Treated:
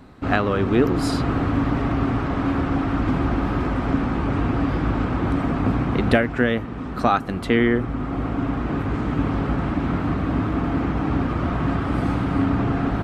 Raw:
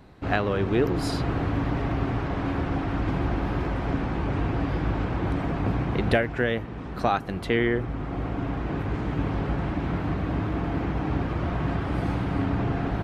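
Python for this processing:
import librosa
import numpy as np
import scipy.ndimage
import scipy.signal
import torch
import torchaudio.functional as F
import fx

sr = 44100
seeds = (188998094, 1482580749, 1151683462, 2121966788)

y = fx.graphic_eq_31(x, sr, hz=(250, 1250, 8000), db=(8, 6, 4))
y = y * 10.0 ** (3.0 / 20.0)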